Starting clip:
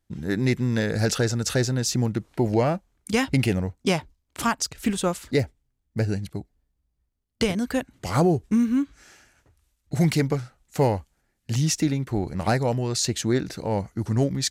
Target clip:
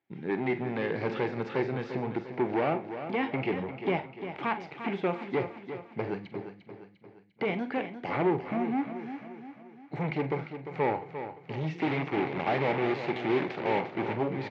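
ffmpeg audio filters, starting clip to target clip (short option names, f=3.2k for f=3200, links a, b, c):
-filter_complex "[0:a]deesser=0.85,flanger=delay=9:depth=6.9:regen=-84:speed=0.48:shape=sinusoidal,asoftclip=type=hard:threshold=-26.5dB,asplit=3[a][b][c];[a]afade=t=out:st=11.74:d=0.02[d];[b]aeval=exprs='0.0473*(cos(1*acos(clip(val(0)/0.0473,-1,1)))-cos(1*PI/2))+0.0168*(cos(6*acos(clip(val(0)/0.0473,-1,1)))-cos(6*PI/2))':c=same,afade=t=in:st=11.74:d=0.02,afade=t=out:st=14.12:d=0.02[e];[c]afade=t=in:st=14.12:d=0.02[f];[d][e][f]amix=inputs=3:normalize=0,highpass=f=150:w=0.5412,highpass=f=150:w=1.3066,equalizer=f=210:t=q:w=4:g=-5,equalizer=f=380:t=q:w=4:g=7,equalizer=f=830:t=q:w=4:g=8,equalizer=f=2.2k:t=q:w=4:g=10,lowpass=f=3.3k:w=0.5412,lowpass=f=3.3k:w=1.3066,asplit=2[g][h];[h]adelay=45,volume=-12.5dB[i];[g][i]amix=inputs=2:normalize=0,aecho=1:1:349|698|1047|1396|1745:0.316|0.155|0.0759|0.0372|0.0182"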